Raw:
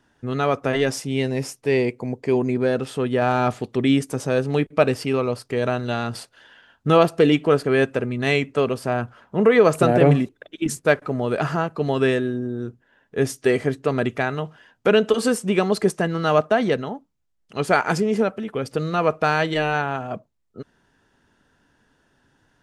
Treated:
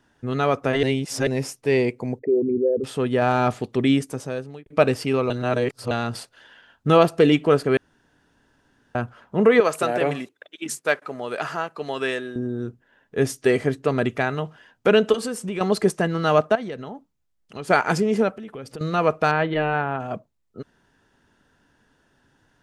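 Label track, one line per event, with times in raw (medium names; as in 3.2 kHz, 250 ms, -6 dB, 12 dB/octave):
0.830000	1.270000	reverse
2.190000	2.840000	resonances exaggerated exponent 3
3.850000	4.660000	fade out
5.300000	5.910000	reverse
7.770000	8.950000	room tone
9.600000	12.360000	high-pass 860 Hz 6 dB/octave
15.150000	15.610000	compression 3:1, threshold -27 dBFS
16.550000	17.700000	compression 3:1, threshold -32 dBFS
18.360000	18.810000	compression 3:1, threshold -35 dBFS
19.310000	20.000000	Gaussian low-pass sigma 2.8 samples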